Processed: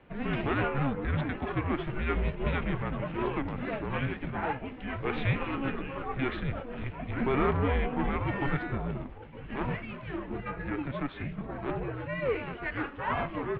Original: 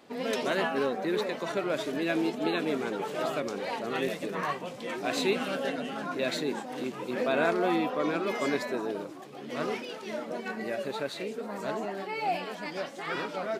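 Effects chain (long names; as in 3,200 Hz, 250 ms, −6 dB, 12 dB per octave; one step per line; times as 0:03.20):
harmonic generator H 8 −23 dB, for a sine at −11.5 dBFS
single-sideband voice off tune −270 Hz 240–3,100 Hz
0:12.64–0:13.23: parametric band 2,200 Hz → 660 Hz +8.5 dB 0.77 octaves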